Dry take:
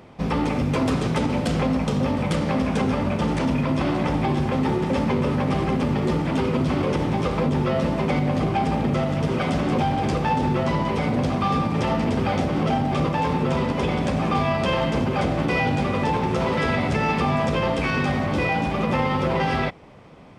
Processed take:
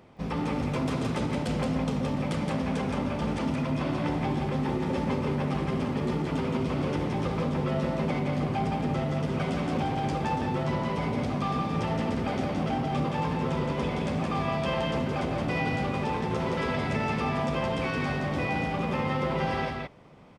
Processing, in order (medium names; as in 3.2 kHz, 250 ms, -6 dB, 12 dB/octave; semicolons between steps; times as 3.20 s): delay 170 ms -3.5 dB; trim -8 dB